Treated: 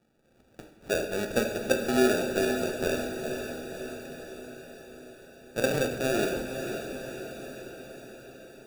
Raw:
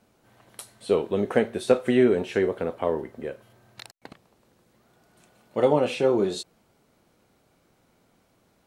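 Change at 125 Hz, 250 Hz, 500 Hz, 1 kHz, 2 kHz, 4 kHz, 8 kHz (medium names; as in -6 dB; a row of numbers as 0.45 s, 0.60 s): -3.0 dB, -3.5 dB, -5.0 dB, -3.5 dB, +4.0 dB, +2.0 dB, +7.0 dB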